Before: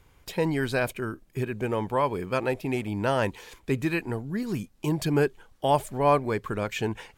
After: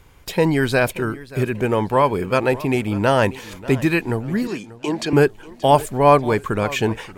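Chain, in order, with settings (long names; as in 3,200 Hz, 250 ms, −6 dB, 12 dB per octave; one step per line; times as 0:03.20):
0:04.47–0:05.13: three-way crossover with the lows and the highs turned down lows −21 dB, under 270 Hz, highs −23 dB, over 8,000 Hz
feedback echo with a swinging delay time 584 ms, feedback 36%, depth 144 cents, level −18.5 dB
level +8.5 dB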